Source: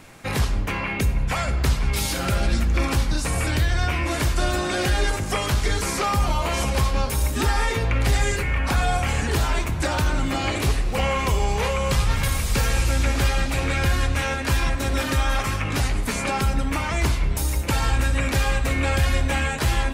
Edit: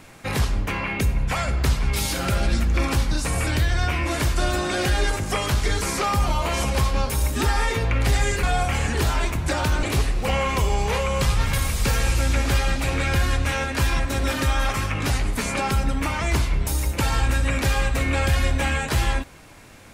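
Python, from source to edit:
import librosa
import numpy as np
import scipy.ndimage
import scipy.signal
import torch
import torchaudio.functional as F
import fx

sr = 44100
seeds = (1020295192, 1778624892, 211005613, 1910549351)

y = fx.edit(x, sr, fx.cut(start_s=8.43, length_s=0.34),
    fx.cut(start_s=10.17, length_s=0.36), tone=tone)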